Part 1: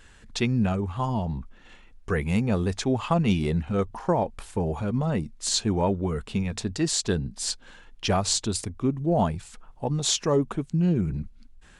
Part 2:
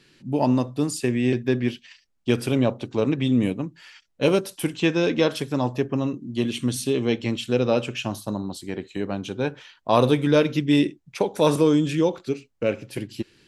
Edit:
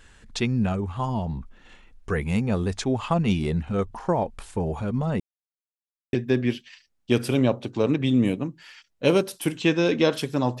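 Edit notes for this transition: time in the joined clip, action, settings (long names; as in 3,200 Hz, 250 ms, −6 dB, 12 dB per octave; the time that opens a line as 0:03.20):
part 1
0:05.20–0:06.13: silence
0:06.13: continue with part 2 from 0:01.31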